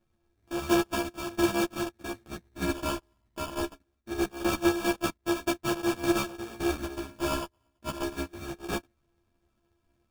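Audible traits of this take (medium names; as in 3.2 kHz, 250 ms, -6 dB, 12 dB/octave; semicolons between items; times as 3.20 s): a buzz of ramps at a fixed pitch in blocks of 128 samples; phasing stages 4, 0.23 Hz, lowest notch 540–2900 Hz; aliases and images of a low sample rate 2 kHz, jitter 0%; a shimmering, thickened sound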